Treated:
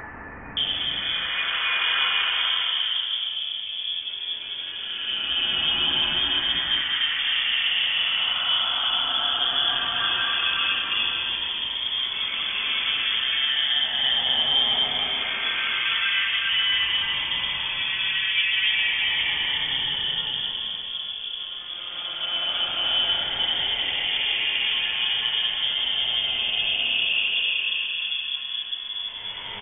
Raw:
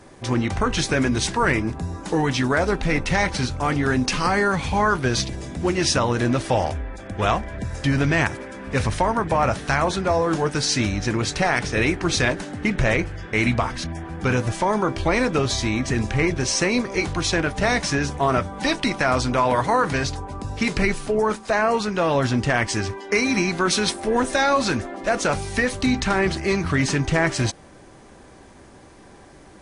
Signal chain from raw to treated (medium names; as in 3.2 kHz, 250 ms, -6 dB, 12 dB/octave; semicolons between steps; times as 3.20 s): hum notches 60/120/180/240 Hz; Paulstretch 4.9×, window 0.50 s, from 1.13 s; added noise blue -43 dBFS; bands offset in time highs, lows 570 ms, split 1.4 kHz; frequency inversion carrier 3.4 kHz; trim -2.5 dB